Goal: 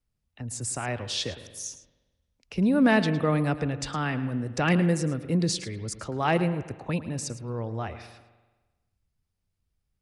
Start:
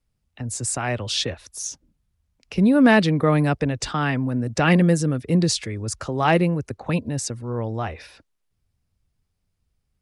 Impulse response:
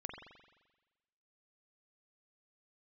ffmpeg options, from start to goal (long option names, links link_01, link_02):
-filter_complex "[0:a]asplit=2[link_01][link_02];[1:a]atrim=start_sample=2205,adelay=109[link_03];[link_02][link_03]afir=irnorm=-1:irlink=0,volume=-10dB[link_04];[link_01][link_04]amix=inputs=2:normalize=0,volume=-6dB"